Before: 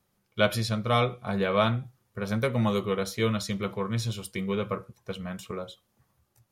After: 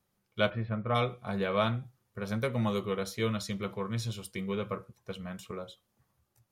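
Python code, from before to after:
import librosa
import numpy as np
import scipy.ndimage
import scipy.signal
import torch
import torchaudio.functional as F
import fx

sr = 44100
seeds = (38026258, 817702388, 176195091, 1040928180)

y = fx.cheby2_lowpass(x, sr, hz=6700.0, order=4, stop_db=60, at=(0.49, 0.94), fade=0.02)
y = y * librosa.db_to_amplitude(-4.5)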